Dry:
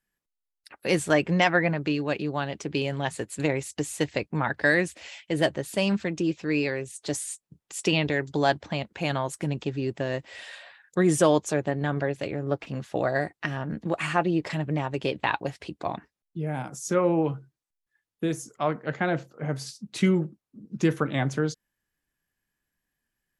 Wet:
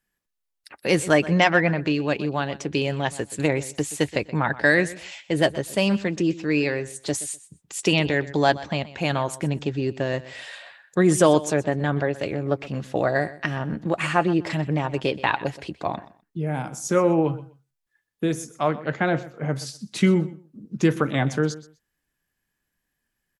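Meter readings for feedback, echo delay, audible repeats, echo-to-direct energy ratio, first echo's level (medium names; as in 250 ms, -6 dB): 19%, 125 ms, 2, -17.5 dB, -17.5 dB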